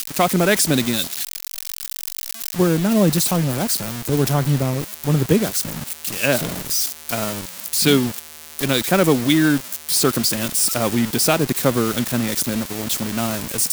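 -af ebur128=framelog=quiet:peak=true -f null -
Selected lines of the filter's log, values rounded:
Integrated loudness:
  I:         -19.4 LUFS
  Threshold: -29.4 LUFS
Loudness range:
  LRA:         2.8 LU
  Threshold: -39.3 LUFS
  LRA low:   -20.6 LUFS
  LRA high:  -17.8 LUFS
True peak:
  Peak:       -2.1 dBFS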